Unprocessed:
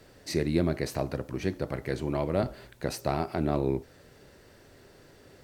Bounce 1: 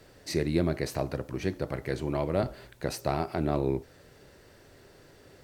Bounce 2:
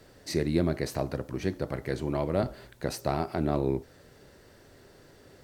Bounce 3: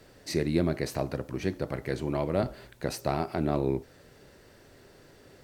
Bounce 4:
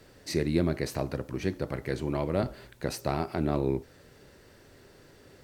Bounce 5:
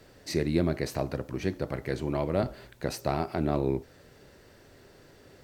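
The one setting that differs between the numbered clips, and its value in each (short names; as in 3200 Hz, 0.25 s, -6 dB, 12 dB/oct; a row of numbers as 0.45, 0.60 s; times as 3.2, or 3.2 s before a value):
bell, frequency: 230, 2500, 77, 680, 9800 Hz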